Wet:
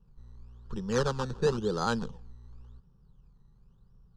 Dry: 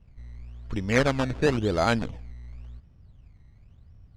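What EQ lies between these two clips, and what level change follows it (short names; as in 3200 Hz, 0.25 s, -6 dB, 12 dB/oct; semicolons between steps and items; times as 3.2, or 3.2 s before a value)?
dynamic EQ 5800 Hz, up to +5 dB, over -47 dBFS, Q 0.9; high shelf 7500 Hz -9.5 dB; fixed phaser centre 430 Hz, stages 8; -2.0 dB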